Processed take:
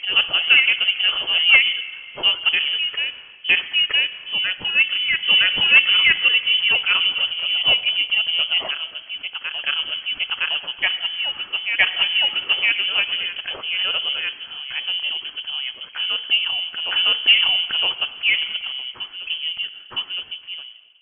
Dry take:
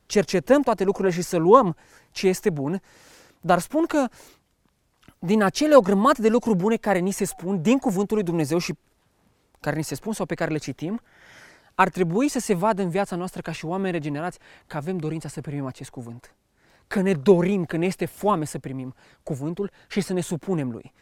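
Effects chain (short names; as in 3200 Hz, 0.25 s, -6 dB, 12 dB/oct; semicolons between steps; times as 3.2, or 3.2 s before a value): ending faded out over 1.70 s; reverse echo 0.964 s -5.5 dB; plate-style reverb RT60 1.8 s, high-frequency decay 0.8×, DRR 13 dB; in parallel at -3.5 dB: sine folder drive 5 dB, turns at -1 dBFS; on the sum: inverted band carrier 3200 Hz; gain -7 dB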